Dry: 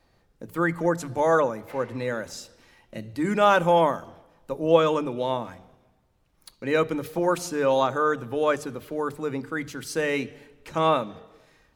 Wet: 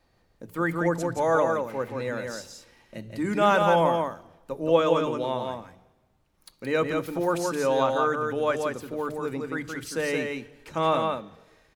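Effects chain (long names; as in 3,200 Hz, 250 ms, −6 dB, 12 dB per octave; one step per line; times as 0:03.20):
single-tap delay 172 ms −4 dB
level −2.5 dB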